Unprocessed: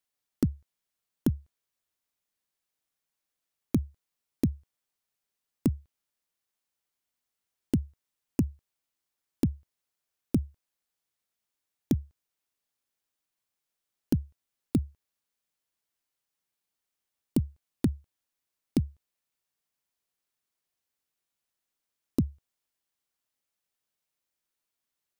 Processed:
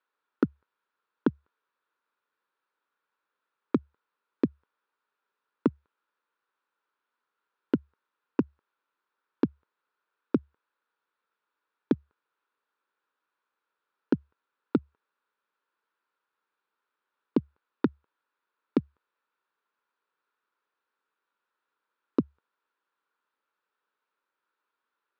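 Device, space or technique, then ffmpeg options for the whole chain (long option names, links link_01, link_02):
phone earpiece: -af "highpass=360,equalizer=frequency=440:width_type=q:width=4:gain=4,equalizer=frequency=690:width_type=q:width=4:gain=-9,equalizer=frequency=980:width_type=q:width=4:gain=6,equalizer=frequency=1400:width_type=q:width=4:gain=9,equalizer=frequency=2100:width_type=q:width=4:gain=-7,equalizer=frequency=3000:width_type=q:width=4:gain=-7,lowpass=frequency=3100:width=0.5412,lowpass=frequency=3100:width=1.3066,volume=8dB"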